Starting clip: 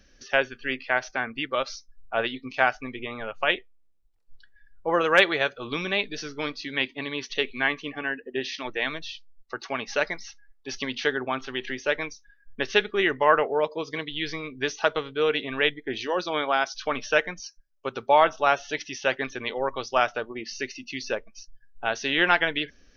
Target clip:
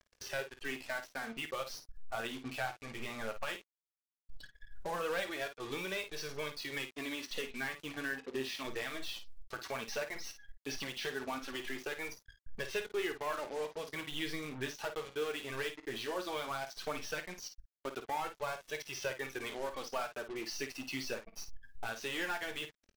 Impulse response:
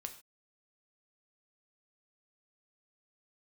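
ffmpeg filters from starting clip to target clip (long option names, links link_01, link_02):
-filter_complex "[0:a]acompressor=threshold=-40dB:ratio=2.5,volume=30.5dB,asoftclip=hard,volume=-30.5dB,flanger=delay=1.8:depth=7.7:regen=-7:speed=0.16:shape=sinusoidal,acrusher=bits=7:mix=0:aa=0.5,asplit=2[link_01][link_02];[link_02]aecho=0:1:22|53:0.2|0.335[link_03];[link_01][link_03]amix=inputs=2:normalize=0,volume=2.5dB"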